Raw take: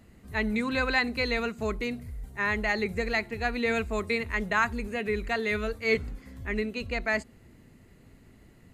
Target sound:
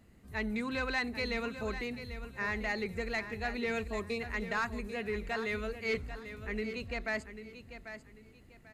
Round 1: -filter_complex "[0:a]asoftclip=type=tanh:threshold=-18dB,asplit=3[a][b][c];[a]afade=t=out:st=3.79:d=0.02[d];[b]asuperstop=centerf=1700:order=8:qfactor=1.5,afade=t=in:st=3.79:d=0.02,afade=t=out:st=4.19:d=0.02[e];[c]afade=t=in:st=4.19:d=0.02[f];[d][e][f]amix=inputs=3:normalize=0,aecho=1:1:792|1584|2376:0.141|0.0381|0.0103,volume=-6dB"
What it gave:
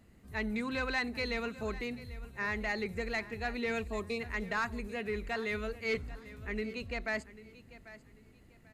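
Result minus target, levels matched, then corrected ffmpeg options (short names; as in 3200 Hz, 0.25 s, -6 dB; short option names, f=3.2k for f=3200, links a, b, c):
echo-to-direct -6 dB
-filter_complex "[0:a]asoftclip=type=tanh:threshold=-18dB,asplit=3[a][b][c];[a]afade=t=out:st=3.79:d=0.02[d];[b]asuperstop=centerf=1700:order=8:qfactor=1.5,afade=t=in:st=3.79:d=0.02,afade=t=out:st=4.19:d=0.02[e];[c]afade=t=in:st=4.19:d=0.02[f];[d][e][f]amix=inputs=3:normalize=0,aecho=1:1:792|1584|2376:0.282|0.0761|0.0205,volume=-6dB"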